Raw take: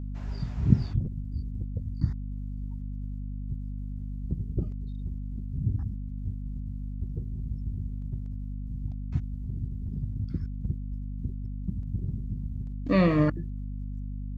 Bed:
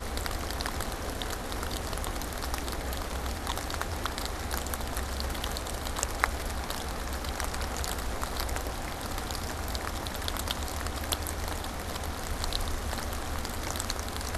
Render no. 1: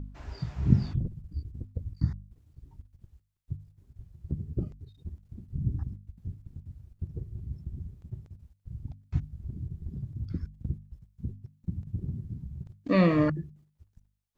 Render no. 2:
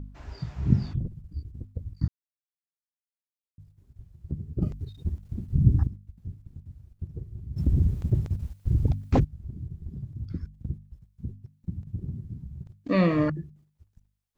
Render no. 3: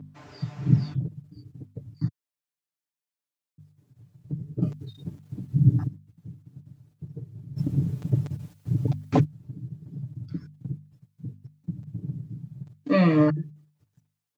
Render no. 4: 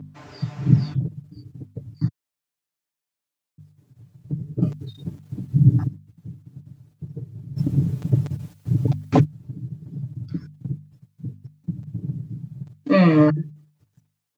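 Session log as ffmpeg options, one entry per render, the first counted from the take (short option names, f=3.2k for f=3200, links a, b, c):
-af "bandreject=f=50:t=h:w=4,bandreject=f=100:t=h:w=4,bandreject=f=150:t=h:w=4,bandreject=f=200:t=h:w=4,bandreject=f=250:t=h:w=4"
-filter_complex "[0:a]asplit=3[a][b][c];[a]afade=t=out:st=7.56:d=0.02[d];[b]aeval=exprs='0.178*sin(PI/2*5.62*val(0)/0.178)':c=same,afade=t=in:st=7.56:d=0.02,afade=t=out:st=9.23:d=0.02[e];[c]afade=t=in:st=9.23:d=0.02[f];[d][e][f]amix=inputs=3:normalize=0,asplit=5[g][h][i][j][k];[g]atrim=end=2.08,asetpts=PTS-STARTPTS,afade=t=out:st=2.076:d=0.004:c=hsin[l];[h]atrim=start=2.08:end=3.58,asetpts=PTS-STARTPTS,volume=0[m];[i]atrim=start=3.58:end=4.622,asetpts=PTS-STARTPTS,afade=t=in:d=0.004:c=hsin[n];[j]atrim=start=4.618:end=5.872,asetpts=PTS-STARTPTS,volume=10.5dB[o];[k]atrim=start=5.868[p];[l][m][n]concat=n=3:v=0:a=1[q];[q][o]acrossfade=d=0.004:c1=hsin:c2=hsin[r];[r][p]acrossfade=d=0.004:c1=hsin:c2=hsin"
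-af "highpass=f=110:w=0.5412,highpass=f=110:w=1.3066,aecho=1:1:6.8:0.82"
-af "volume=4.5dB,alimiter=limit=-3dB:level=0:latency=1"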